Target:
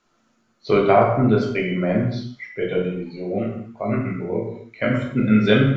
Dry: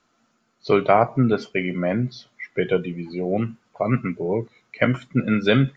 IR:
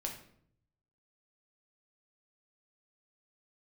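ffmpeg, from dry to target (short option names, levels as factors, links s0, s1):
-filter_complex "[0:a]asettb=1/sr,asplit=3[s0][s1][s2];[s0]atrim=end=2.484[s3];[s1]atrim=start=2.48:end=4.9,asetpts=PTS-STARTPTS,afade=t=in:d=0.004:c=qsin,afade=t=out:st=2.416:d=0.004:c=qsin,flanger=delay=18.5:depth=3.9:speed=1.4[s4];[s2]atrim=start=4.896[s5];[s3][s4]acrossfade=d=0.004:c1=hsin:c2=qsin[s6];[s6][s5]acrossfade=d=0.004:c1=qsin:c2=hsin[s7];[1:a]atrim=start_sample=2205,afade=t=out:st=0.24:d=0.01,atrim=end_sample=11025,asetrate=28665,aresample=44100[s8];[s7][s8]afir=irnorm=-1:irlink=0,volume=0.841"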